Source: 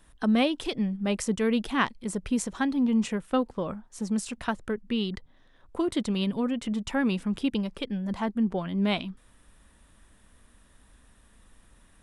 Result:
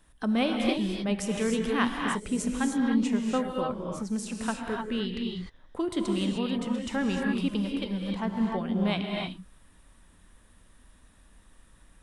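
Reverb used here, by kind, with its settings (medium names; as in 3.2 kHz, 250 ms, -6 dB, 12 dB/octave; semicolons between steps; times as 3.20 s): gated-style reverb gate 330 ms rising, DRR 0.5 dB; trim -3 dB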